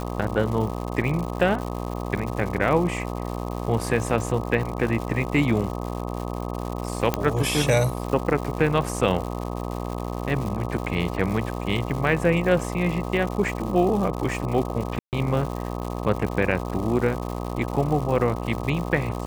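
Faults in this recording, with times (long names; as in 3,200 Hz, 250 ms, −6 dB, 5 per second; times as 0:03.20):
mains buzz 60 Hz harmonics 21 −30 dBFS
surface crackle 220 per second −30 dBFS
0:07.14: click −7 dBFS
0:14.99–0:15.13: drop-out 138 ms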